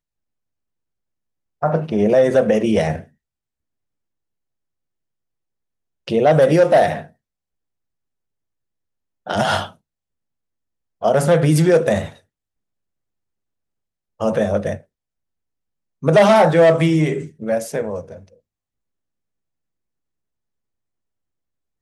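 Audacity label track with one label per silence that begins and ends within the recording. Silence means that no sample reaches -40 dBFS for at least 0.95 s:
3.040000	6.070000	silence
7.070000	9.260000	silence
9.720000	11.020000	silence
12.170000	14.200000	silence
14.810000	16.030000	silence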